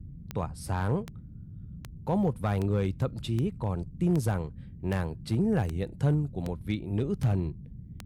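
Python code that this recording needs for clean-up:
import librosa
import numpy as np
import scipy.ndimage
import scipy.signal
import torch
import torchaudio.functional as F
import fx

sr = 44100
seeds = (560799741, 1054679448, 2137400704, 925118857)

y = fx.fix_declip(x, sr, threshold_db=-18.5)
y = fx.fix_declick_ar(y, sr, threshold=10.0)
y = fx.noise_reduce(y, sr, print_start_s=1.06, print_end_s=1.56, reduce_db=30.0)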